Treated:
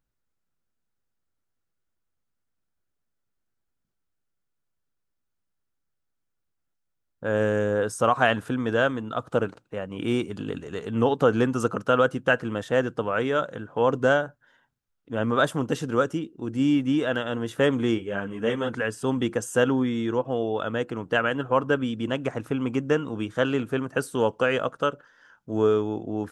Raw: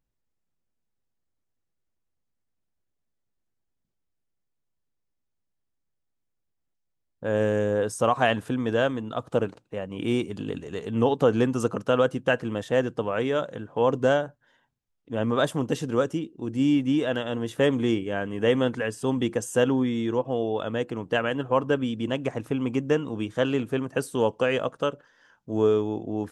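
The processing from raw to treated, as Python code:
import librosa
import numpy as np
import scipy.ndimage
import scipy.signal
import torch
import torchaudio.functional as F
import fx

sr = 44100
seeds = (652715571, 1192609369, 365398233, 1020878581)

y = fx.peak_eq(x, sr, hz=1400.0, db=7.5, octaves=0.45)
y = fx.ensemble(y, sr, at=(17.97, 18.69), fade=0.02)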